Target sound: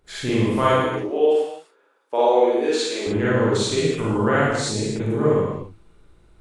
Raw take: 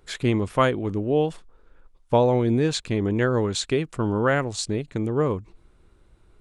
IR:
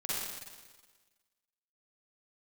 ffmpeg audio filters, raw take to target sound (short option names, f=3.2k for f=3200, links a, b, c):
-filter_complex "[0:a]asettb=1/sr,asplit=3[a][b][c];[a]atrim=end=0.764[d];[b]atrim=start=0.76:end=3.07,asetpts=PTS-STARTPTS,afade=t=in:d=0.004:c=qsin,afade=t=out:st=2.306:d=0.004:c=qsin,highpass=f=340:w=0.5412,highpass=f=340:w=1.3066[e];[c]atrim=start=3.066[f];[d][e]acrossfade=d=0.004:c1=hsin:c2=qsin[g];[g][f]acrossfade=d=0.004:c1=qsin:c2=hsin[h];[1:a]atrim=start_sample=2205,afade=t=out:st=0.43:d=0.01,atrim=end_sample=19404,asetrate=48510,aresample=44100[i];[h][i]afir=irnorm=-1:irlink=0"